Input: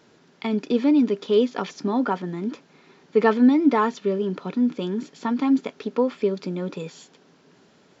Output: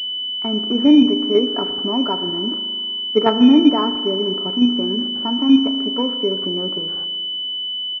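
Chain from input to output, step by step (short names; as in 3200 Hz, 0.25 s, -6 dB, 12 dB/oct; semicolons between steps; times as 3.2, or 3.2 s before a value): low shelf 64 Hz +9.5 dB; comb 3.1 ms, depth 50%; in parallel at +1 dB: level quantiser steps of 16 dB; on the sum: spring tank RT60 1.8 s, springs 37 ms, chirp 65 ms, DRR 9.5 dB; pulse-width modulation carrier 3000 Hz; gain -2 dB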